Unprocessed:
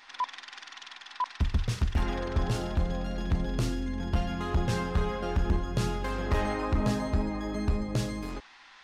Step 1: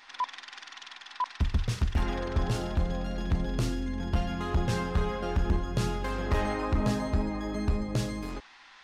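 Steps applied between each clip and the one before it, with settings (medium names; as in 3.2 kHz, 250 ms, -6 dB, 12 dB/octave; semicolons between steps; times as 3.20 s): no audible change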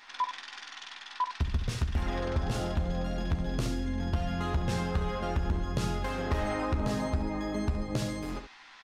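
on a send: early reflections 13 ms -8.5 dB, 69 ms -9 dB; on the sum: compression, threshold -25 dBFS, peak gain reduction 6 dB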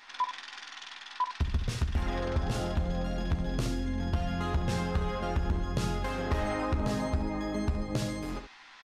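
resampled via 32 kHz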